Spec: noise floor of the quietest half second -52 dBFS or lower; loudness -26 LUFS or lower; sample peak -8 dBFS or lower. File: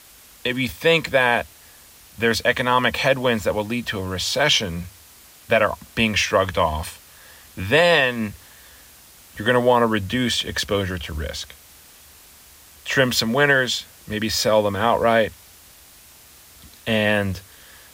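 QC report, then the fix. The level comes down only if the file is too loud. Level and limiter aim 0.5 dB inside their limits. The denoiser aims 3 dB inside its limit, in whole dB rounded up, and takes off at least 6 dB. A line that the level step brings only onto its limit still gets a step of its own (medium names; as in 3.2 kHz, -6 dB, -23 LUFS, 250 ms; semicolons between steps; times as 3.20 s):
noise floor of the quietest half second -48 dBFS: fail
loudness -20.0 LUFS: fail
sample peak -5.0 dBFS: fail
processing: trim -6.5 dB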